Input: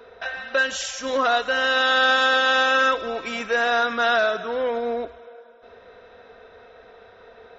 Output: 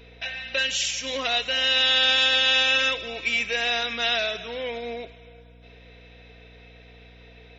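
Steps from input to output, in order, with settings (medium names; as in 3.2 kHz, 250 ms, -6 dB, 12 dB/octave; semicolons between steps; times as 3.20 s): hum 60 Hz, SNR 20 dB; resonant high shelf 1.8 kHz +9 dB, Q 3; trim -7 dB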